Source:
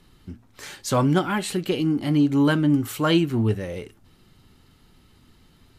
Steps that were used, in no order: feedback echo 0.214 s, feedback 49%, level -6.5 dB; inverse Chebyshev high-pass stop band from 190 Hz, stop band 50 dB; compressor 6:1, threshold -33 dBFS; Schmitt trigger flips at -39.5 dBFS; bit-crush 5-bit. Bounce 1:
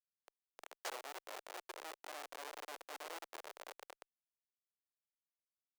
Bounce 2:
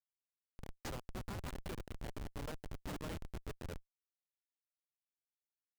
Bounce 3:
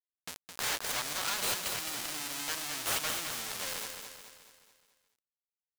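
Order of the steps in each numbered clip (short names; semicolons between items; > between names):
feedback echo > compressor > bit-crush > Schmitt trigger > inverse Chebyshev high-pass; inverse Chebyshev high-pass > compressor > feedback echo > bit-crush > Schmitt trigger; Schmitt trigger > compressor > inverse Chebyshev high-pass > bit-crush > feedback echo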